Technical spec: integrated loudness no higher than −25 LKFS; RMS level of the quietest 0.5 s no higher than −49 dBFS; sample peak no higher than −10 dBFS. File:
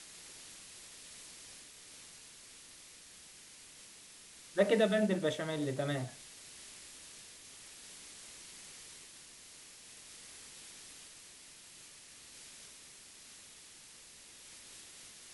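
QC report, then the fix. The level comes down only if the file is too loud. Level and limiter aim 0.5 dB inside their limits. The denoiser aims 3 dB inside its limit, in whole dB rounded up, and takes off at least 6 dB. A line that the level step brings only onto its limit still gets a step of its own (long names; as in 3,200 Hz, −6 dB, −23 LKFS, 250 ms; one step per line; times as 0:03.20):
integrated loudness −39.5 LKFS: in spec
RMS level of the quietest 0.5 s −56 dBFS: in spec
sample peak −14.5 dBFS: in spec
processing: no processing needed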